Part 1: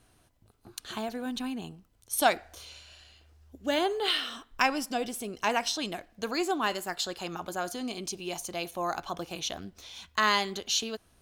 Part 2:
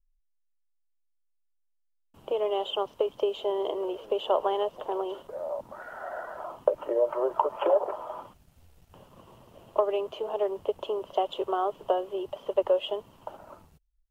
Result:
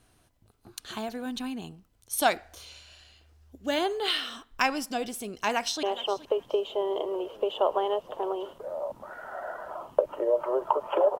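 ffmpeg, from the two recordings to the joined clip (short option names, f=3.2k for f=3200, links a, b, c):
-filter_complex "[0:a]apad=whole_dur=11.19,atrim=end=11.19,atrim=end=5.832[a];[1:a]atrim=start=2.518:end=7.88[b];[a][b]acrossfade=d=0.004:c1=hsin:c2=hsin,asplit=2[c][d];[d]afade=t=in:st=5.38:d=0.01,afade=t=out:st=5.83:d=0.01,aecho=0:1:420|840:0.149624|0.0224435[e];[c][e]amix=inputs=2:normalize=0"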